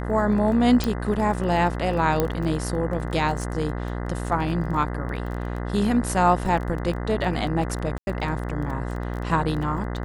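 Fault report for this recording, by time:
buzz 60 Hz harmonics 34 -29 dBFS
crackle 21 per s -31 dBFS
0.84 s: pop
2.20 s: pop -8 dBFS
7.98–8.07 s: dropout 91 ms

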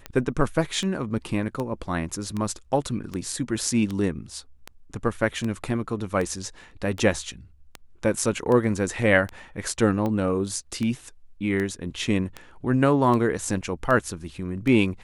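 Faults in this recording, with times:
tick 78 rpm -17 dBFS

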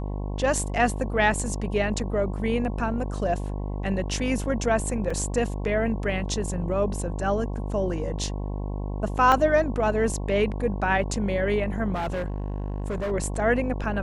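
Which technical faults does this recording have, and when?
buzz 50 Hz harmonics 22 -30 dBFS
5.10 s: dropout 4 ms
9.32 s: dropout 2.9 ms
11.94–13.12 s: clipped -25 dBFS

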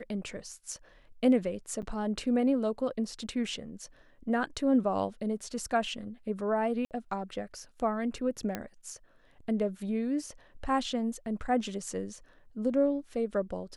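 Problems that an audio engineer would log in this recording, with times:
1.82–1.83 s: dropout 8.3 ms
6.85–6.91 s: dropout 58 ms
8.55 s: pop -18 dBFS

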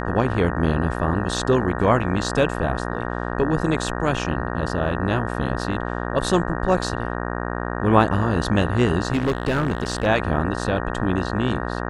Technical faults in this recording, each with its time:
buzz 60 Hz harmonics 31 -27 dBFS
9.13–10.07 s: clipped -16.5 dBFS

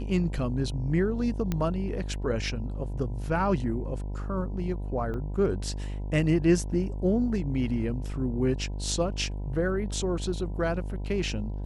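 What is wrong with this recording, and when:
buzz 50 Hz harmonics 20 -33 dBFS
1.52 s: pop -15 dBFS
5.14 s: dropout 2.1 ms

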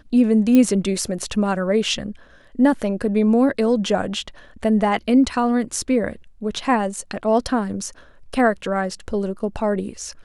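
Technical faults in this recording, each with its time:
0.55 s: pop -6 dBFS

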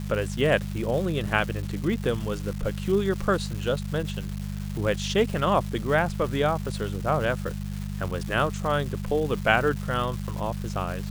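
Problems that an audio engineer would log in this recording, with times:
crackle 580 per s -33 dBFS
hum 50 Hz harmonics 4 -32 dBFS

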